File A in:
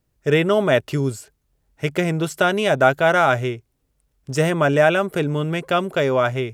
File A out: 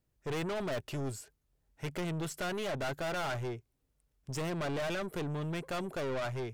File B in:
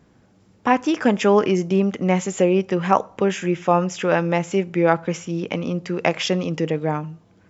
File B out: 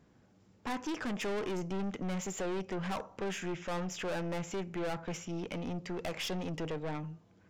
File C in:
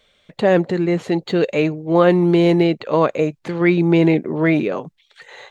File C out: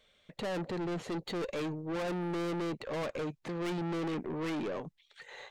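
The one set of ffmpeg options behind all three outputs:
-af "aeval=exprs='(tanh(17.8*val(0)+0.25)-tanh(0.25))/17.8':c=same,volume=-8dB"

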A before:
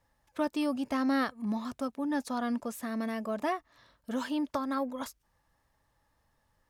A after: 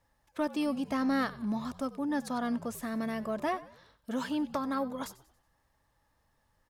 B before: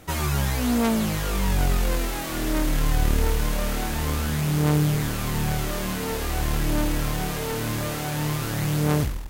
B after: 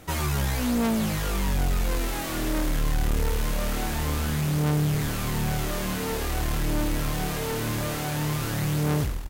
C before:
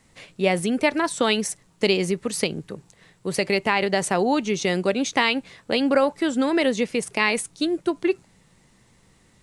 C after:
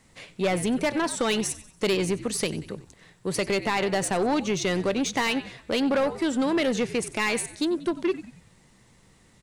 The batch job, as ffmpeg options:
-filter_complex "[0:a]asplit=5[a][b][c][d][e];[b]adelay=93,afreqshift=-68,volume=-18dB[f];[c]adelay=186,afreqshift=-136,volume=-25.3dB[g];[d]adelay=279,afreqshift=-204,volume=-32.7dB[h];[e]adelay=372,afreqshift=-272,volume=-40dB[i];[a][f][g][h][i]amix=inputs=5:normalize=0,asoftclip=type=tanh:threshold=-18.5dB"

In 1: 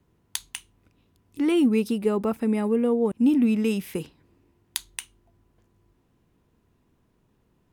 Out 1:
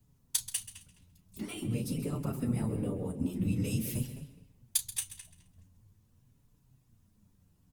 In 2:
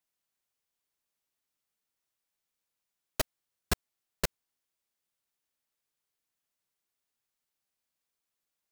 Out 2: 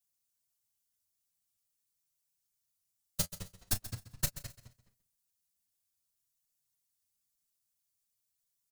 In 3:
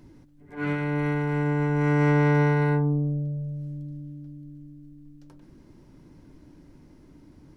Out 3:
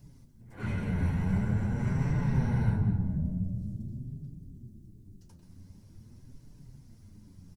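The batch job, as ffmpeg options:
-filter_complex "[0:a]asplit=2[a][b];[b]adelay=210,lowpass=f=3.9k:p=1,volume=-11.5dB,asplit=2[c][d];[d]adelay=210,lowpass=f=3.9k:p=1,volume=0.25,asplit=2[e][f];[f]adelay=210,lowpass=f=3.9k:p=1,volume=0.25[g];[c][e][g]amix=inputs=3:normalize=0[h];[a][h]amix=inputs=2:normalize=0,acompressor=threshold=-25dB:ratio=5,equalizer=f=330:t=o:w=0.39:g=-14.5,afftfilt=real='hypot(re,im)*cos(2*PI*random(0))':imag='hypot(re,im)*sin(2*PI*random(1))':win_size=512:overlap=0.75,asplit=2[i][j];[j]adelay=33,volume=-12.5dB[k];[i][k]amix=inputs=2:normalize=0,flanger=delay=6.7:depth=5:regen=27:speed=0.46:shape=triangular,bass=f=250:g=13,treble=f=4k:g=15,asplit=2[l][m];[m]aecho=0:1:132|264|396:0.188|0.0452|0.0108[n];[l][n]amix=inputs=2:normalize=0"

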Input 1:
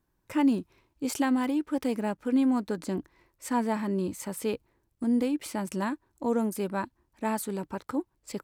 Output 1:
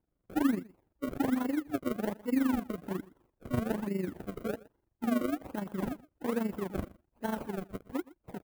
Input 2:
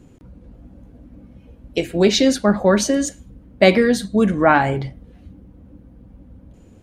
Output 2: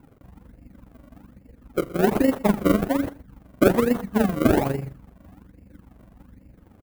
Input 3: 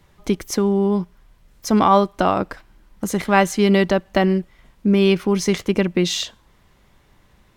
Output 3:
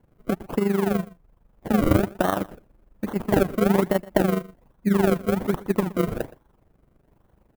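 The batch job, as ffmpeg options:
-af "acrusher=samples=35:mix=1:aa=0.000001:lfo=1:lforange=35:lforate=1.2,lowshelf=f=120:g=-3.5,tremolo=f=24:d=0.71,equalizer=f=5k:w=0.46:g=-14,aecho=1:1:119:0.0944"

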